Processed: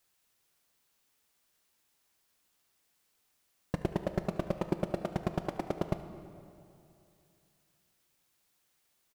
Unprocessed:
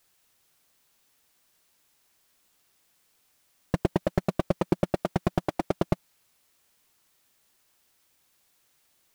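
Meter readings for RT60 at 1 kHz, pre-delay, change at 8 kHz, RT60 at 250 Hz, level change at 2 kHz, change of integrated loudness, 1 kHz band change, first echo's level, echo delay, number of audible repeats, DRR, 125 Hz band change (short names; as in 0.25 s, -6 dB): 2.7 s, 6 ms, -6.5 dB, 2.7 s, -6.5 dB, -6.5 dB, -6.5 dB, -17.0 dB, 74 ms, 1, 8.5 dB, -6.5 dB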